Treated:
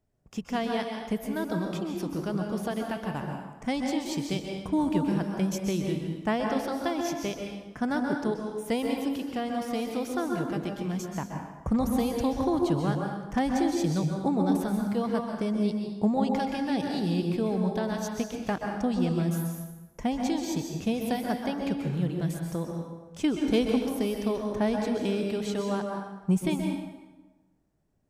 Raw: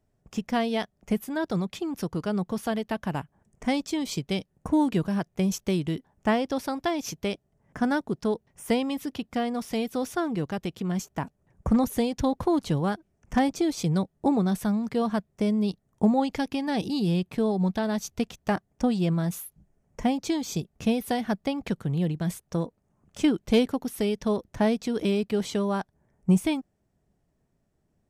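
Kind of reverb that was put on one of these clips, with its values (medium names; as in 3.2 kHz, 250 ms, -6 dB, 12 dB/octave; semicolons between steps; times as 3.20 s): plate-style reverb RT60 1.2 s, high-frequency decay 0.7×, pre-delay 115 ms, DRR 1.5 dB; trim -4 dB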